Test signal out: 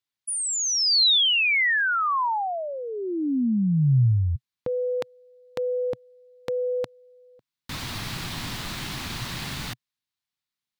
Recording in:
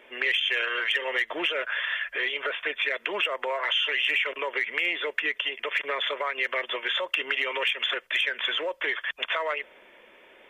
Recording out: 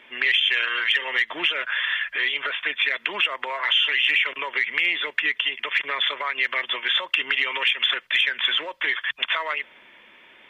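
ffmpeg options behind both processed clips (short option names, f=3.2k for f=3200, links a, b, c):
-af "equalizer=f=125:t=o:w=1:g=11,equalizer=f=250:t=o:w=1:g=5,equalizer=f=500:t=o:w=1:g=-6,equalizer=f=1k:t=o:w=1:g=5,equalizer=f=2k:t=o:w=1:g=5,equalizer=f=4k:t=o:w=1:g=10,volume=-3dB"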